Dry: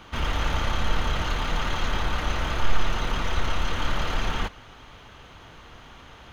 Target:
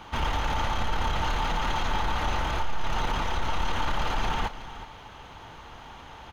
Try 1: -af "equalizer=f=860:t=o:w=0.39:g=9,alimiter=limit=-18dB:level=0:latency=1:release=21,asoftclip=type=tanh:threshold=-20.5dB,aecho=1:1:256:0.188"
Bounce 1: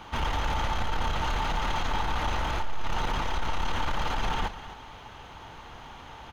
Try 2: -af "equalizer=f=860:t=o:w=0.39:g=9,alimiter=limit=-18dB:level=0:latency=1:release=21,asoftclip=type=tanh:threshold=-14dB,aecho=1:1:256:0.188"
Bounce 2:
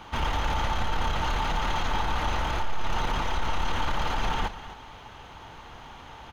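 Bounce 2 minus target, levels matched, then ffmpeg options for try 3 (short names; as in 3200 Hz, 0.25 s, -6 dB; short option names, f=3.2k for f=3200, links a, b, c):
echo 0.113 s early
-af "equalizer=f=860:t=o:w=0.39:g=9,alimiter=limit=-18dB:level=0:latency=1:release=21,asoftclip=type=tanh:threshold=-14dB,aecho=1:1:369:0.188"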